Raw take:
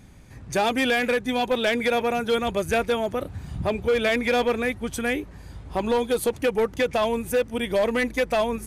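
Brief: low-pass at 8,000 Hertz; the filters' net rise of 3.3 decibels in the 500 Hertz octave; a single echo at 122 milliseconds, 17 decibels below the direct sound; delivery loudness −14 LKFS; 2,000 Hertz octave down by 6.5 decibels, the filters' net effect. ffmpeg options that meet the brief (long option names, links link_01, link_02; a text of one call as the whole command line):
ffmpeg -i in.wav -af "lowpass=8000,equalizer=frequency=500:width_type=o:gain=4,equalizer=frequency=2000:width_type=o:gain=-8.5,aecho=1:1:122:0.141,volume=8.5dB" out.wav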